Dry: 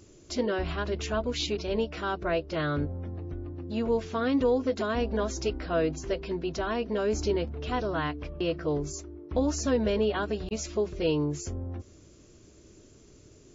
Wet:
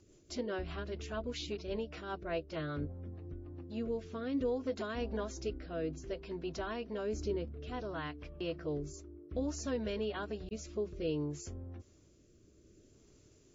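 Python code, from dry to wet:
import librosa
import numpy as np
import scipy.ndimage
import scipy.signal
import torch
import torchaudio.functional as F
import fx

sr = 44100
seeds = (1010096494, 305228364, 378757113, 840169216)

y = fx.rotary_switch(x, sr, hz=5.0, then_hz=0.6, switch_at_s=2.86)
y = y * 10.0 ** (-7.5 / 20.0)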